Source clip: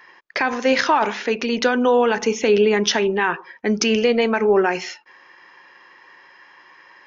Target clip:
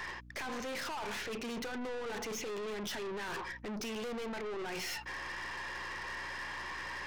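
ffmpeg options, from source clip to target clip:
ffmpeg -i in.wav -af "alimiter=limit=-16dB:level=0:latency=1:release=30,areverse,acompressor=threshold=-40dB:ratio=4,areverse,aeval=exprs='val(0)+0.000708*(sin(2*PI*60*n/s)+sin(2*PI*2*60*n/s)/2+sin(2*PI*3*60*n/s)/3+sin(2*PI*4*60*n/s)/4+sin(2*PI*5*60*n/s)/5)':channel_layout=same,aeval=exprs='(tanh(282*val(0)+0.25)-tanh(0.25))/282':channel_layout=same,volume=11dB" out.wav

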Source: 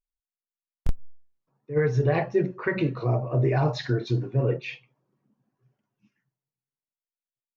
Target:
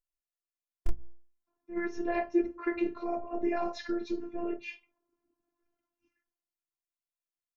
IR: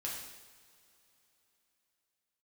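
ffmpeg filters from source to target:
-af "equalizer=frequency=3700:width_type=o:width=0.46:gain=-6,bandreject=frequency=60:width_type=h:width=6,bandreject=frequency=120:width_type=h:width=6,bandreject=frequency=180:width_type=h:width=6,bandreject=frequency=240:width_type=h:width=6,afftfilt=real='hypot(re,im)*cos(PI*b)':imag='0':win_size=512:overlap=0.75,volume=-2dB"

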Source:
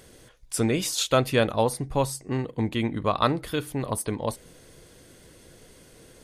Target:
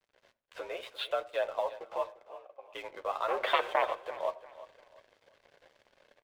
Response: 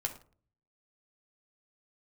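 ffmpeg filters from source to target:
-filter_complex "[0:a]asettb=1/sr,asplit=3[link_01][link_02][link_03];[link_01]atrim=end=0.894[link_04];[link_02]atrim=start=0.89:end=1.73,asetpts=PTS-STARTPTS,afade=type=in:duration=0.004:curve=qsin,afade=type=out:start_time=0.836:duration=0.004:curve=qsin,agate=range=-6dB:threshold=-26dB:ratio=16:detection=peak[link_05];[link_03]atrim=start=1.726[link_06];[link_04][link_05]acrossfade=duration=0.004:curve1=hsin:curve2=qsin[link_07];[link_07][link_06]acrossfade=duration=0.004:curve1=qsin:curve2=hsin,tiltshelf=frequency=1200:gain=4.5,acompressor=threshold=-24dB:ratio=4,alimiter=limit=-19.5dB:level=0:latency=1:release=362,dynaudnorm=framelen=120:gausssize=3:maxgain=3.5dB,asettb=1/sr,asplit=3[link_08][link_09][link_10];[link_08]atrim=end=3.284[link_11];[link_09]atrim=start=3.28:end=3.84,asetpts=PTS-STARTPTS,afade=type=in:duration=0.004:curve=qsin,afade=type=out:start_time=0.556:duration=0.004:curve=qsin,aeval=exprs='0.158*sin(PI/2*3.16*val(0)/0.158)':channel_layout=same[link_12];[link_10]atrim=start=3.836[link_13];[link_11][link_12]acrossfade=duration=0.004:curve1=hsin:curve2=qsin[link_14];[link_14][link_13]acrossfade=duration=0.004:curve1=qsin:curve2=hsin,highpass=frequency=480:width_type=q:width=0.5412,highpass=frequency=480:width_type=q:width=1.307,lowpass=frequency=3400:width_type=q:width=0.5176,lowpass=frequency=3400:width_type=q:width=0.7071,lowpass=frequency=3400:width_type=q:width=1.932,afreqshift=64,flanger=delay=6.5:depth=6.1:regen=10:speed=0.82:shape=sinusoidal,aeval=exprs='sgn(val(0))*max(abs(val(0))-0.002,0)':channel_layout=same,asplit=3[link_15][link_16][link_17];[link_15]afade=type=out:start_time=2.24:duration=0.02[link_18];[link_16]asplit=3[link_19][link_20][link_21];[link_19]bandpass=frequency=730:width_type=q:width=8,volume=0dB[link_22];[link_20]bandpass=frequency=1090:width_type=q:width=8,volume=-6dB[link_23];[link_21]bandpass=frequency=2440:width_type=q:width=8,volume=-9dB[link_24];[link_22][link_23][link_24]amix=inputs=3:normalize=0,afade=type=in:start_time=2.24:duration=0.02,afade=type=out:start_time=2.73:duration=0.02[link_25];[link_17]afade=type=in:start_time=2.73:duration=0.02[link_26];[link_18][link_25][link_26]amix=inputs=3:normalize=0,aecho=1:1:347|694|1041:0.158|0.0475|0.0143,asplit=2[link_27][link_28];[1:a]atrim=start_sample=2205[link_29];[link_28][link_29]afir=irnorm=-1:irlink=0,volume=-7.5dB[link_30];[link_27][link_30]amix=inputs=2:normalize=0"

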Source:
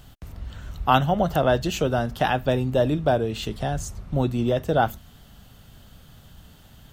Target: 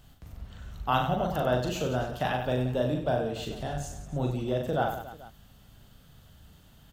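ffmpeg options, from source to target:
ffmpeg -i in.wav -af "aecho=1:1:40|96|174.4|284.2|437.8:0.631|0.398|0.251|0.158|0.1,volume=-8.5dB" out.wav

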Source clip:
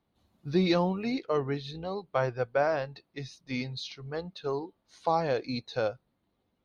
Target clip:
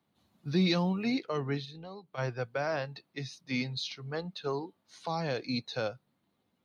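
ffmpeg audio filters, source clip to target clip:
ffmpeg -i in.wav -filter_complex "[0:a]acrossover=split=230|2400[link_01][link_02][link_03];[link_02]alimiter=level_in=0.5dB:limit=-24dB:level=0:latency=1:release=223,volume=-0.5dB[link_04];[link_01][link_04][link_03]amix=inputs=3:normalize=0,equalizer=frequency=410:width=0.67:gain=-4.5,asplit=3[link_05][link_06][link_07];[link_05]afade=type=out:start_time=1.64:duration=0.02[link_08];[link_06]acompressor=threshold=-50dB:ratio=2.5,afade=type=in:start_time=1.64:duration=0.02,afade=type=out:start_time=2.17:duration=0.02[link_09];[link_07]afade=type=in:start_time=2.17:duration=0.02[link_10];[link_08][link_09][link_10]amix=inputs=3:normalize=0,highpass=160,bass=frequency=250:gain=4,treble=frequency=4000:gain=0,volume=2.5dB" out.wav

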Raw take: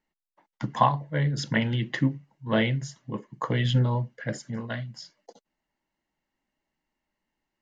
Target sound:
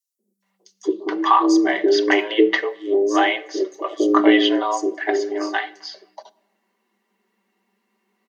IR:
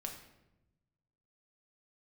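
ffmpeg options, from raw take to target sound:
-filter_complex "[0:a]aecho=1:1:4.7:0.52,alimiter=limit=-14dB:level=0:latency=1:release=380,asplit=2[link_01][link_02];[link_02]asoftclip=type=tanh:threshold=-20.5dB,volume=-12dB[link_03];[link_01][link_03]amix=inputs=2:normalize=0,acrossover=split=350|5800[link_04][link_05][link_06];[link_04]adelay=170[link_07];[link_05]adelay=390[link_08];[link_07][link_08][link_06]amix=inputs=3:normalize=0,afreqshift=210,asplit=2[link_09][link_10];[1:a]atrim=start_sample=2205[link_11];[link_10][link_11]afir=irnorm=-1:irlink=0,volume=-11.5dB[link_12];[link_09][link_12]amix=inputs=2:normalize=0,asetrate=40517,aresample=44100,volume=8dB"

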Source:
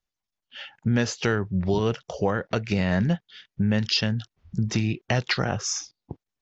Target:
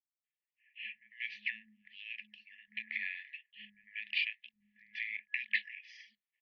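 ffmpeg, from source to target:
ffmpeg -i in.wav -filter_complex "[0:a]afftfilt=real='re*(1-between(b*sr/4096,100,2000))':imag='im*(1-between(b*sr/4096,100,2000))':win_size=4096:overlap=0.75,acrossover=split=350|1200[link_01][link_02][link_03];[link_02]adelay=50[link_04];[link_03]adelay=240[link_05];[link_01][link_04][link_05]amix=inputs=3:normalize=0,highpass=frequency=250:width_type=q:width=0.5412,highpass=frequency=250:width_type=q:width=1.307,lowpass=frequency=3000:width_type=q:width=0.5176,lowpass=frequency=3000:width_type=q:width=0.7071,lowpass=frequency=3000:width_type=q:width=1.932,afreqshift=-310" out.wav

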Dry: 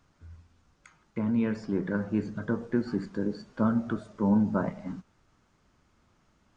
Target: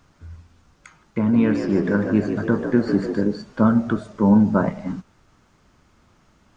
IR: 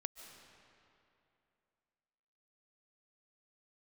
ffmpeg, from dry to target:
-filter_complex "[0:a]asettb=1/sr,asplit=3[link_01][link_02][link_03];[link_01]atrim=end=1.184[link_04];[link_02]atrim=start=1.18:end=3.24,asetpts=PTS-STARTPTS,afade=type=in:duration=0.004:curve=qsin,afade=type=out:start_time=2.056:duration=0.004:curve=qsin,asplit=7[link_05][link_06][link_07][link_08][link_09][link_10][link_11];[link_06]adelay=150,afreqshift=60,volume=-8dB[link_12];[link_07]adelay=300,afreqshift=120,volume=-13.5dB[link_13];[link_08]adelay=450,afreqshift=180,volume=-19dB[link_14];[link_09]adelay=600,afreqshift=240,volume=-24.5dB[link_15];[link_10]adelay=750,afreqshift=300,volume=-30.1dB[link_16];[link_11]adelay=900,afreqshift=360,volume=-35.6dB[link_17];[link_05][link_12][link_13][link_14][link_15][link_16][link_17]amix=inputs=7:normalize=0,atrim=end_sample=90846[link_18];[link_03]atrim=start=3.236[link_19];[link_04][link_18]acrossfade=duration=0.004:curve1=hsin:curve2=qsin[link_20];[link_20][link_19]acrossfade=duration=0.004:curve1=qsin:curve2=hsin,volume=9dB"

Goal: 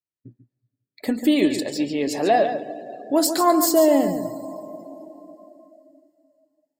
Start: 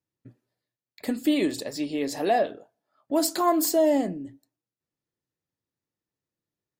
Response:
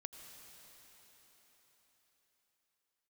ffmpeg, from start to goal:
-filter_complex "[0:a]asplit=2[link_01][link_02];[1:a]atrim=start_sample=2205,adelay=142[link_03];[link_02][link_03]afir=irnorm=-1:irlink=0,volume=-3.5dB[link_04];[link_01][link_04]amix=inputs=2:normalize=0,afftdn=noise_reduction=20:noise_floor=-48,volume=4.5dB"

